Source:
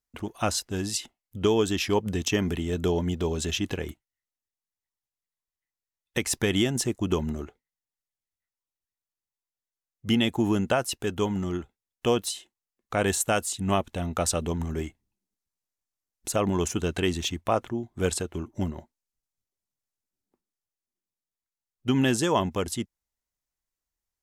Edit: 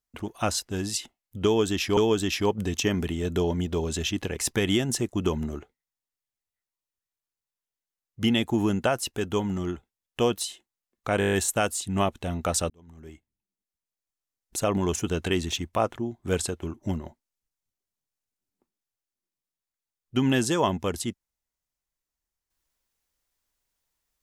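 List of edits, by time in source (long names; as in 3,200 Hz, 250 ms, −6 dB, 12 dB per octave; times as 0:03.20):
0:01.45–0:01.97: repeat, 2 plays
0:03.85–0:06.23: remove
0:13.05: stutter 0.02 s, 8 plays
0:14.42–0:16.28: fade in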